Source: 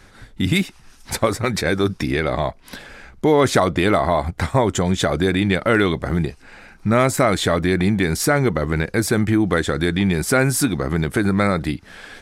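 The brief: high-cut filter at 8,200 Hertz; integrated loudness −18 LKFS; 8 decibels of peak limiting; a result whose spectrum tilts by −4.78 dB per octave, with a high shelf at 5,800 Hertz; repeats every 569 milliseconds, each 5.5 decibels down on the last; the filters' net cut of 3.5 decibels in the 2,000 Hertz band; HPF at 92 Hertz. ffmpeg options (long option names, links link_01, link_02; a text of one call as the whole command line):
ffmpeg -i in.wav -af "highpass=92,lowpass=8200,equalizer=frequency=2000:width_type=o:gain=-5.5,highshelf=frequency=5800:gain=8,alimiter=limit=-11dB:level=0:latency=1,aecho=1:1:569|1138|1707|2276|2845|3414|3983:0.531|0.281|0.149|0.079|0.0419|0.0222|0.0118,volume=3.5dB" out.wav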